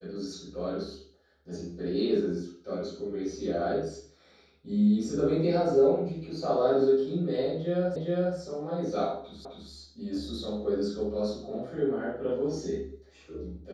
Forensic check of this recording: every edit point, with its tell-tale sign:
7.96 s: repeat of the last 0.41 s
9.45 s: repeat of the last 0.26 s

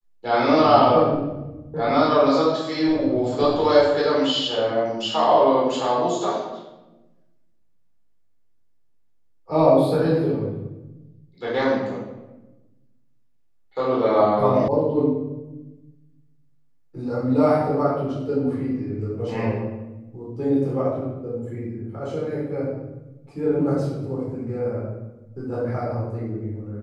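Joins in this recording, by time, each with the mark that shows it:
14.68 s: sound stops dead

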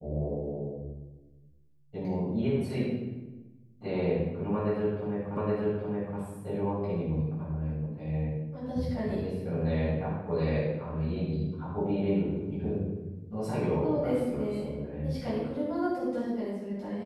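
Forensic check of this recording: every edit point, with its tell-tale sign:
5.37 s: repeat of the last 0.82 s

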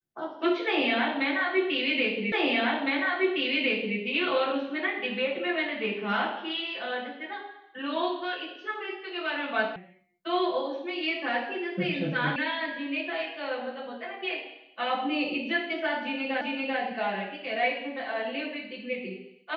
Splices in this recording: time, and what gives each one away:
2.32 s: repeat of the last 1.66 s
9.76 s: sound stops dead
12.36 s: sound stops dead
16.41 s: repeat of the last 0.39 s

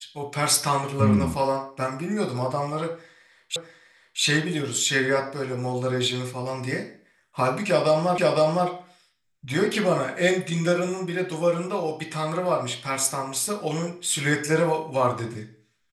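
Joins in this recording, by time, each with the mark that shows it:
3.56 s: repeat of the last 0.65 s
8.18 s: repeat of the last 0.51 s

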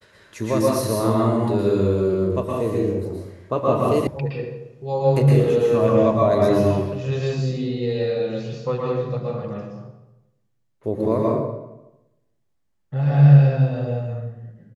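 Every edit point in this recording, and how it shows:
4.07 s: sound stops dead

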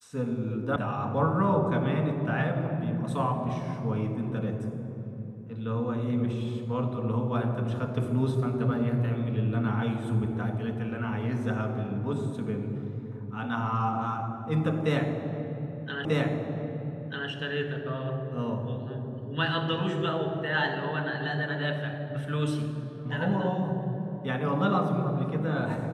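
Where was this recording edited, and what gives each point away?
0.76 s: sound stops dead
16.05 s: repeat of the last 1.24 s

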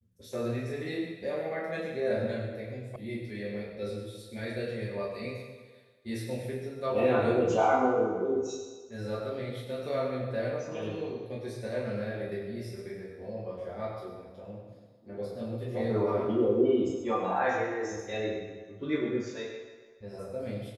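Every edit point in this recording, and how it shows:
2.96 s: sound stops dead

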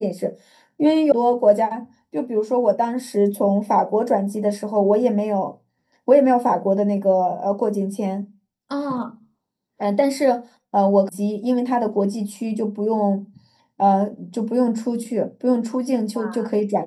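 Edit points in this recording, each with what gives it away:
1.12 s: sound stops dead
11.09 s: sound stops dead

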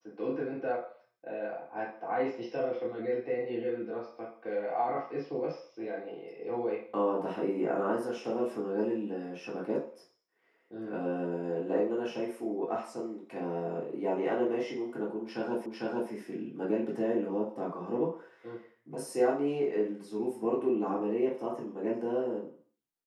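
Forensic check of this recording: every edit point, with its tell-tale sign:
15.66 s: repeat of the last 0.45 s

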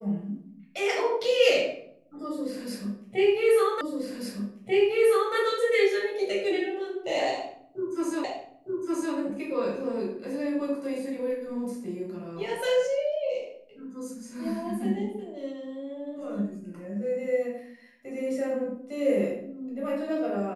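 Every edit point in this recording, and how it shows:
3.81 s: repeat of the last 1.54 s
8.24 s: repeat of the last 0.91 s

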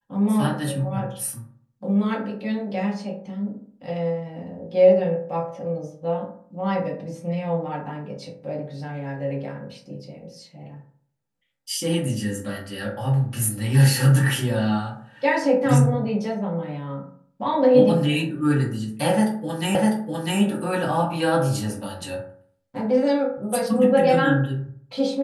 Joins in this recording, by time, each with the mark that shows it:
19.75 s: repeat of the last 0.65 s

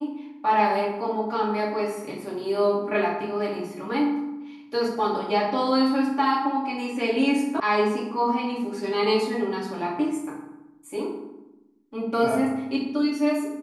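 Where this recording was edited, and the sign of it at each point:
7.60 s: sound stops dead

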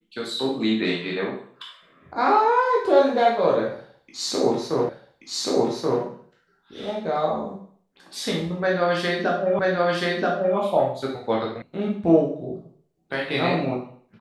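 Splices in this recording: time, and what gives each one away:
4.89 s: repeat of the last 1.13 s
9.59 s: repeat of the last 0.98 s
11.62 s: sound stops dead

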